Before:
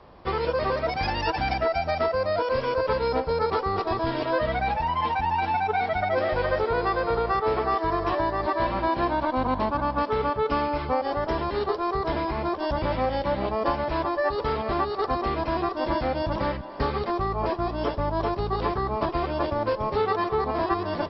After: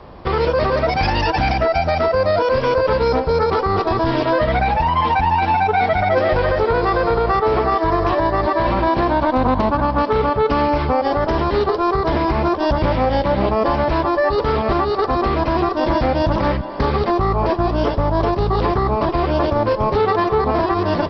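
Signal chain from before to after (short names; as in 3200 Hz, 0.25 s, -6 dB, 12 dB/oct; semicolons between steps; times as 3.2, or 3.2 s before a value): low shelf 370 Hz +4 dB; limiter -17.5 dBFS, peak gain reduction 6.5 dB; Doppler distortion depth 0.18 ms; gain +9 dB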